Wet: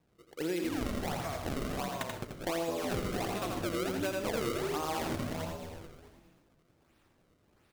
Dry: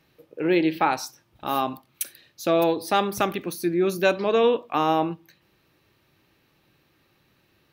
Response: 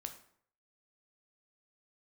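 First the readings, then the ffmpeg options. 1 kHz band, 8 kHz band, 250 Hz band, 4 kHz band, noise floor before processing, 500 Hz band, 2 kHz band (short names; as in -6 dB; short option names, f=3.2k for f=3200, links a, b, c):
-13.0 dB, -5.5 dB, -9.5 dB, -7.5 dB, -66 dBFS, -11.5 dB, -9.0 dB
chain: -filter_complex "[0:a]asplit=7[a][b][c][d][e][f][g];[b]adelay=213,afreqshift=-76,volume=-4dB[h];[c]adelay=426,afreqshift=-152,volume=-10.4dB[i];[d]adelay=639,afreqshift=-228,volume=-16.8dB[j];[e]adelay=852,afreqshift=-304,volume=-23.1dB[k];[f]adelay=1065,afreqshift=-380,volume=-29.5dB[l];[g]adelay=1278,afreqshift=-456,volume=-35.9dB[m];[a][h][i][j][k][l][m]amix=inputs=7:normalize=0,acrusher=samples=30:mix=1:aa=0.000001:lfo=1:lforange=48:lforate=1.4,asplit=2[n][o];[1:a]atrim=start_sample=2205,adelay=84[p];[o][p]afir=irnorm=-1:irlink=0,volume=-1dB[q];[n][q]amix=inputs=2:normalize=0,acompressor=threshold=-24dB:ratio=5,volume=-7dB"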